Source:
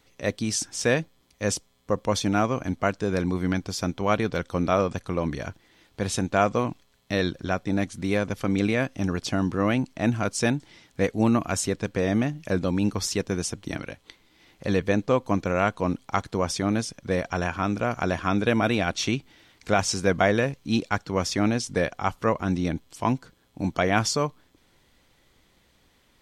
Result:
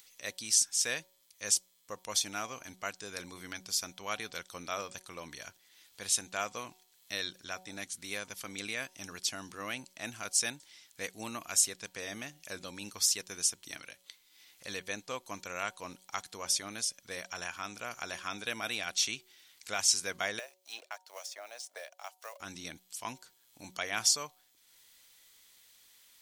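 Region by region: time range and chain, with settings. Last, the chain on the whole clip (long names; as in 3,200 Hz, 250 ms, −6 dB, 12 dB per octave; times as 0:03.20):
0:20.39–0:22.40: mu-law and A-law mismatch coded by A + four-pole ladder high-pass 570 Hz, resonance 70% + multiband upward and downward compressor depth 100%
whole clip: first-order pre-emphasis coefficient 0.97; hum removal 185.9 Hz, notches 5; upward compression, threshold −57 dBFS; level +3.5 dB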